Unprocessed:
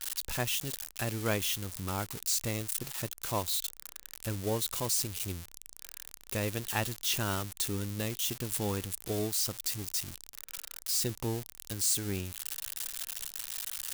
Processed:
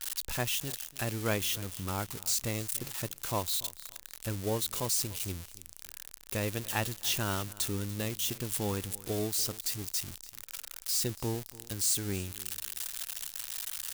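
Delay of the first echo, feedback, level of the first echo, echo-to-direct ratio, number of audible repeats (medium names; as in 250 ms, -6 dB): 290 ms, 22%, -19.5 dB, -19.5 dB, 2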